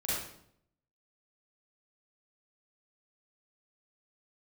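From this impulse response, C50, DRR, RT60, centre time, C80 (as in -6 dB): -2.5 dB, -9.5 dB, 0.70 s, 76 ms, 2.5 dB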